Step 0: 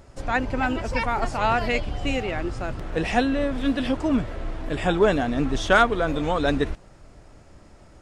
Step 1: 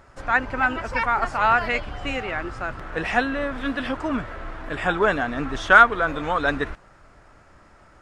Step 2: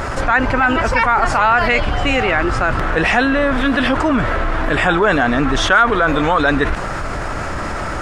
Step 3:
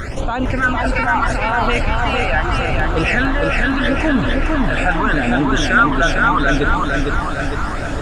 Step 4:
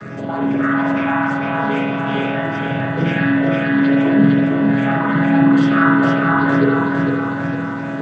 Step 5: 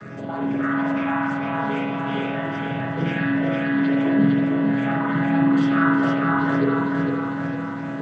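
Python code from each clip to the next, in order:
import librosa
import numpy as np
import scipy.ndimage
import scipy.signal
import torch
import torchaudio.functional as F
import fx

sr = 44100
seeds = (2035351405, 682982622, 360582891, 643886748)

y1 = fx.peak_eq(x, sr, hz=1400.0, db=13.0, octaves=1.6)
y1 = y1 * librosa.db_to_amplitude(-5.5)
y2 = fx.env_flatten(y1, sr, amount_pct=70)
y2 = y2 * librosa.db_to_amplitude(-1.0)
y3 = fx.phaser_stages(y2, sr, stages=12, low_hz=330.0, high_hz=1900.0, hz=0.78, feedback_pct=25)
y3 = fx.echo_feedback(y3, sr, ms=456, feedback_pct=58, wet_db=-3)
y3 = y3 * librosa.db_to_amplitude(-1.0)
y4 = fx.chord_vocoder(y3, sr, chord='minor triad', root=49)
y4 = fx.rev_spring(y4, sr, rt60_s=1.1, pass_ms=(47,), chirp_ms=40, drr_db=-3.0)
y4 = y4 * librosa.db_to_amplitude(-3.0)
y5 = y4 + 10.0 ** (-12.5 / 20.0) * np.pad(y4, (int(365 * sr / 1000.0), 0))[:len(y4)]
y5 = y5 * librosa.db_to_amplitude(-6.0)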